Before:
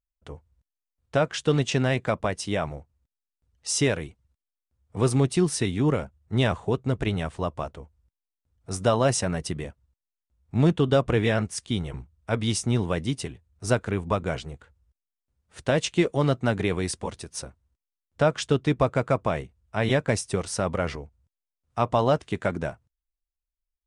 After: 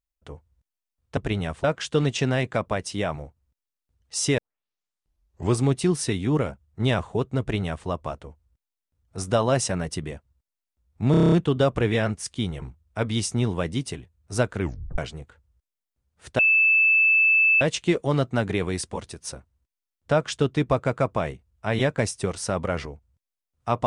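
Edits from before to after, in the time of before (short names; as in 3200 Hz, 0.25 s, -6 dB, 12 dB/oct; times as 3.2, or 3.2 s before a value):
3.91 tape start 1.23 s
6.93–7.4 copy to 1.17
10.64 stutter 0.03 s, 8 plays
13.92 tape stop 0.38 s
15.71 add tone 2630 Hz -15 dBFS 1.22 s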